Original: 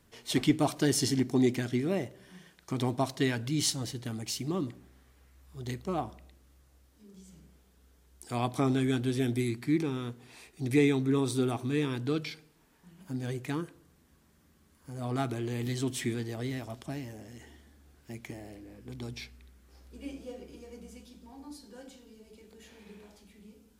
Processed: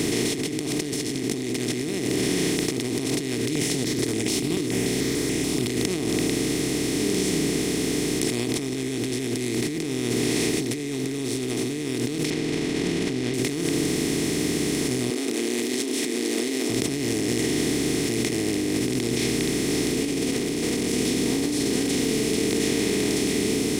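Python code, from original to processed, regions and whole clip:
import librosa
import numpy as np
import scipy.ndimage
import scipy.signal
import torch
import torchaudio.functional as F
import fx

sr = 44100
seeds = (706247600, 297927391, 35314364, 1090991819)

y = fx.chain(x, sr, fx.over_compress(threshold_db=-34.0, ratio=-0.5),
    fx.phaser_held(hz=6.9, low_hz=200.0, high_hz=4300.0), at=(3.41, 5.68))
y = fx.chain(y, sr, fx.dead_time(dead_ms=0.13),
    fx.lowpass(hz=3200.0, slope=24),
    fx.env_flatten(amount_pct=70), at=(12.3, 13.34))
y = fx.chain(y, sr, fx.steep_highpass(hz=240.0, slope=72),
    fx.high_shelf(hz=3600.0, db=5.5),
    fx.doubler(ms=33.0, db=-7.5), at=(15.1, 16.7))
y = fx.chain(y, sr, fx.peak_eq(hz=770.0, db=-6.0, octaves=0.29),
    fx.leveller(passes=3), at=(20.32, 20.92))
y = fx.bin_compress(y, sr, power=0.2)
y = fx.band_shelf(y, sr, hz=950.0, db=-12.0, octaves=1.7)
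y = fx.over_compress(y, sr, threshold_db=-25.0, ratio=-1.0)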